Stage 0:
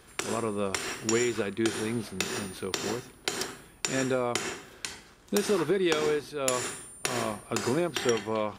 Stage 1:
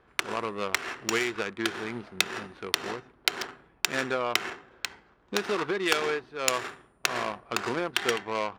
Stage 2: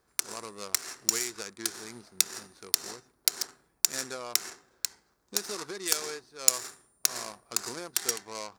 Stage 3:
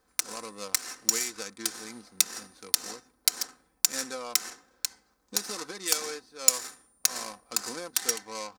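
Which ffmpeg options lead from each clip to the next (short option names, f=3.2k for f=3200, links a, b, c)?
-af "adynamicsmooth=sensitivity=2.5:basefreq=850,tiltshelf=f=740:g=-9,volume=1dB"
-af "aexciter=amount=7.2:drive=8.2:freq=4.5k,volume=-10.5dB"
-af "aecho=1:1:3.9:0.59"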